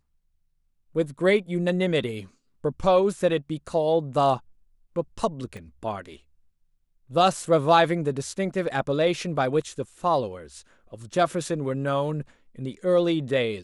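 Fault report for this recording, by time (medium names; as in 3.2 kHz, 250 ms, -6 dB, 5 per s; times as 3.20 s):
5.57 s: pop -28 dBFS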